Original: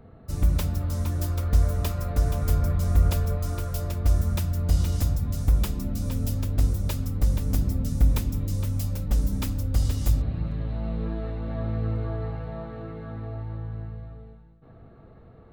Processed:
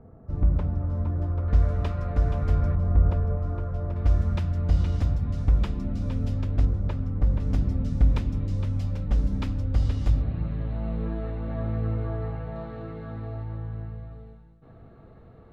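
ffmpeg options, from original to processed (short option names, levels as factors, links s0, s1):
-af "asetnsamples=n=441:p=0,asendcmd='1.48 lowpass f 2500;2.75 lowpass f 1200;3.96 lowpass f 2900;6.65 lowpass f 1700;7.4 lowpass f 3100;12.56 lowpass f 7100;13.44 lowpass f 4000;14.11 lowpass f 9400',lowpass=1100"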